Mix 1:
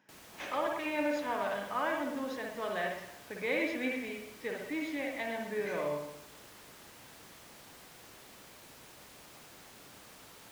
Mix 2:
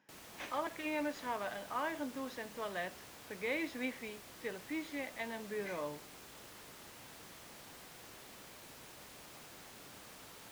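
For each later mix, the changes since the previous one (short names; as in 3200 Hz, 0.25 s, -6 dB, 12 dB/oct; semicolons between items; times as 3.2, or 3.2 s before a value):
reverb: off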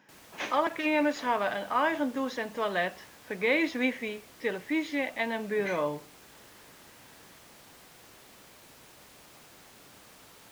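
speech +11.0 dB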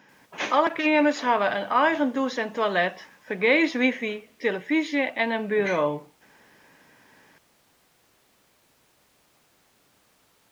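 speech +6.0 dB; background -9.5 dB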